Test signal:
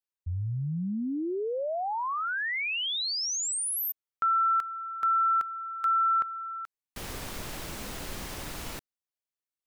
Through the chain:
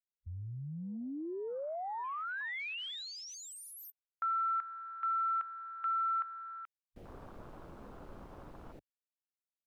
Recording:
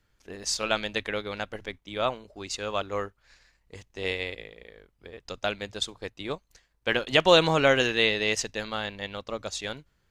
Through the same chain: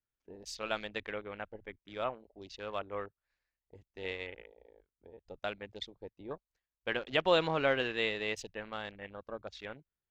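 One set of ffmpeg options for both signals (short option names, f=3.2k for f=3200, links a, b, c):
-af "afwtdn=0.0112,bass=f=250:g=-3,treble=f=4k:g=-10,volume=-8dB"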